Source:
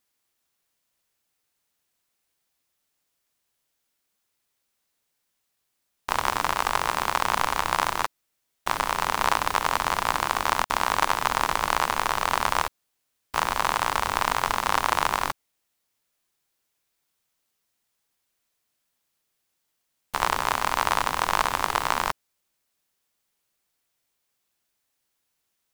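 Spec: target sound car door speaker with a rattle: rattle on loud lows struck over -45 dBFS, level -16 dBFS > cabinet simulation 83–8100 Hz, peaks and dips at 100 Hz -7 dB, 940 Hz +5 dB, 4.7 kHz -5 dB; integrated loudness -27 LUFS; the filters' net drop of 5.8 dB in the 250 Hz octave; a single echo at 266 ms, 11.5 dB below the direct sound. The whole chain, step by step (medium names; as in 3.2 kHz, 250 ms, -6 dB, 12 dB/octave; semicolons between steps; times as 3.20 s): peaking EQ 250 Hz -8 dB; delay 266 ms -11.5 dB; rattle on loud lows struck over -45 dBFS, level -16 dBFS; cabinet simulation 83–8100 Hz, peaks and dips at 100 Hz -7 dB, 940 Hz +5 dB, 4.7 kHz -5 dB; trim -4 dB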